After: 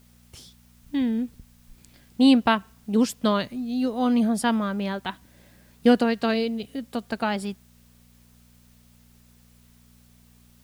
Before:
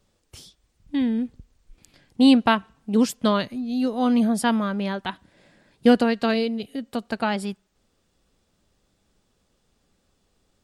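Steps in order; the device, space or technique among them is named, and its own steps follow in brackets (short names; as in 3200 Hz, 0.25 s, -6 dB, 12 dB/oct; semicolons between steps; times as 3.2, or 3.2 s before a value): video cassette with head-switching buzz (buzz 60 Hz, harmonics 4, -55 dBFS -2 dB/oct; white noise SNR 36 dB); gain -1.5 dB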